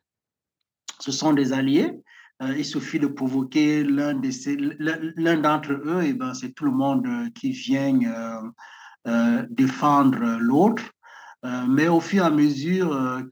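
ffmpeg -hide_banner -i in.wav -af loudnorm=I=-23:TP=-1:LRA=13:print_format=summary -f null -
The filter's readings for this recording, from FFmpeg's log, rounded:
Input Integrated:    -22.4 LUFS
Input True Peak:      -7.2 dBTP
Input LRA:             4.0 LU
Input Threshold:     -32.9 LUFS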